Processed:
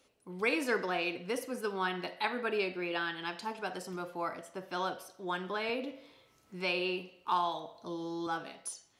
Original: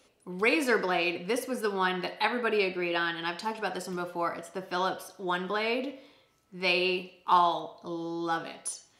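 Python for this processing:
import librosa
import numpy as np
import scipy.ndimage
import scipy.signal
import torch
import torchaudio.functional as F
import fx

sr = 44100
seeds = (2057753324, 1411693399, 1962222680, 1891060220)

y = fx.band_squash(x, sr, depth_pct=40, at=(5.69, 8.27))
y = y * librosa.db_to_amplitude(-5.5)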